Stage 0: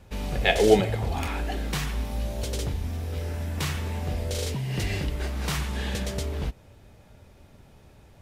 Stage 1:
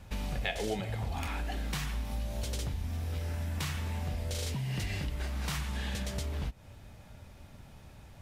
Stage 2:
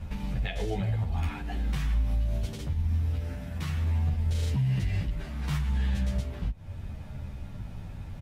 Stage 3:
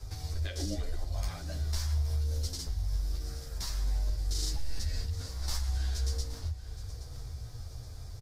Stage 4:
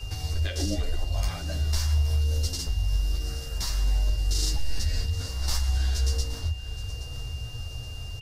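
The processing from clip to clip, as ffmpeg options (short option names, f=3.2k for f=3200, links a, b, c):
-af "equalizer=f=410:t=o:w=0.9:g=-7,acompressor=threshold=-34dB:ratio=4,volume=1.5dB"
-filter_complex "[0:a]bass=f=250:g=9,treble=f=4k:g=-6,alimiter=level_in=3dB:limit=-24dB:level=0:latency=1:release=318,volume=-3dB,asplit=2[a][b];[b]adelay=10.7,afreqshift=-0.72[c];[a][c]amix=inputs=2:normalize=1,volume=8dB"
-af "highshelf=f=3.8k:t=q:w=3:g=10,afreqshift=-130,aecho=1:1:822|1644|2466|3288:0.188|0.081|0.0348|0.015,volume=-4dB"
-af "aeval=exprs='val(0)+0.00316*sin(2*PI*2800*n/s)':c=same,volume=6.5dB"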